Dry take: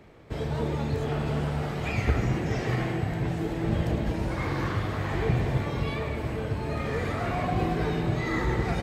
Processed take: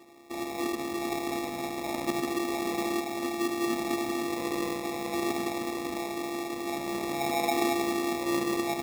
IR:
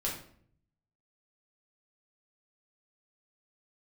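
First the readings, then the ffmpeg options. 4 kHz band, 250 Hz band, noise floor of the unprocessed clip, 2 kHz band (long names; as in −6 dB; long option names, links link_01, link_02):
+4.0 dB, +0.5 dB, −33 dBFS, −2.0 dB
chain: -filter_complex "[0:a]asplit=2[link_01][link_02];[1:a]atrim=start_sample=2205[link_03];[link_02][link_03]afir=irnorm=-1:irlink=0,volume=-22dB[link_04];[link_01][link_04]amix=inputs=2:normalize=0,afftfilt=real='hypot(re,im)*cos(PI*b)':imag='0':win_size=512:overlap=0.75,highpass=frequency=140:width=0.5412,highpass=frequency=140:width=1.3066,equalizer=frequency=240:width_type=q:width=4:gain=9,equalizer=frequency=840:width_type=q:width=4:gain=6,equalizer=frequency=1300:width_type=q:width=4:gain=-10,equalizer=frequency=2200:width_type=q:width=4:gain=-8,equalizer=frequency=3500:width_type=q:width=4:gain=-10,lowpass=frequency=7000:width=0.5412,lowpass=frequency=7000:width=1.3066,acrusher=samples=29:mix=1:aa=0.000001,volume=2.5dB"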